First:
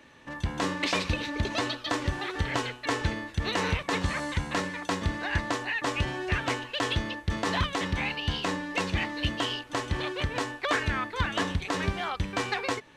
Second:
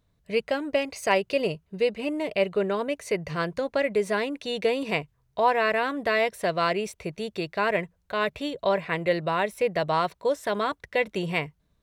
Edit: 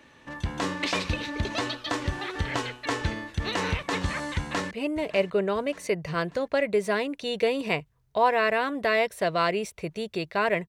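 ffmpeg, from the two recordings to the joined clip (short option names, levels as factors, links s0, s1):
-filter_complex "[0:a]apad=whole_dur=10.68,atrim=end=10.68,atrim=end=4.712[s0];[1:a]atrim=start=1.928:end=7.9[s1];[s0][s1]acrossfade=d=0.004:c1=hsin:c2=hsin,asplit=2[s2][s3];[s3]afade=t=in:st=4.37:d=0.01,afade=t=out:st=4.71:d=0.01,aecho=0:1:590|1180|1770|2360|2950:0.16788|0.0839402|0.0419701|0.0209851|0.0104925[s4];[s2][s4]amix=inputs=2:normalize=0"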